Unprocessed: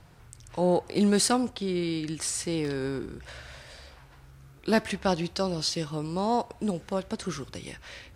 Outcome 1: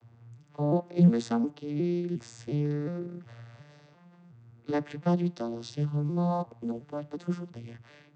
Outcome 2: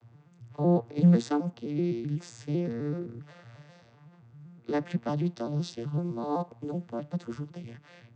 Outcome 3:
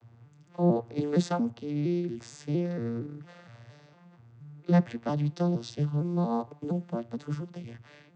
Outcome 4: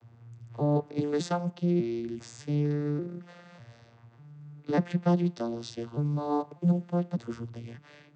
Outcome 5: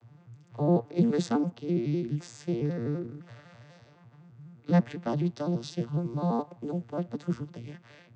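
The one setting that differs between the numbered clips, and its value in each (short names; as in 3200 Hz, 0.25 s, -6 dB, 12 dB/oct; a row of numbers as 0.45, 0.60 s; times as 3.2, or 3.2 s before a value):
arpeggiated vocoder, a note every: 358, 127, 231, 596, 84 ms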